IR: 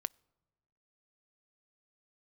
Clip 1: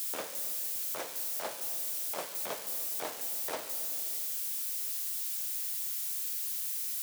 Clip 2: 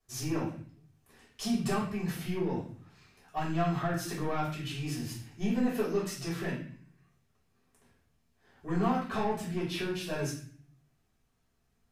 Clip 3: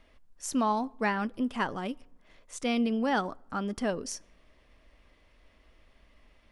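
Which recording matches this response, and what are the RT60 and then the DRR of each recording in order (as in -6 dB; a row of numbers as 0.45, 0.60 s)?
3; 2.9 s, 0.50 s, not exponential; 7.5, -8.0, 20.0 dB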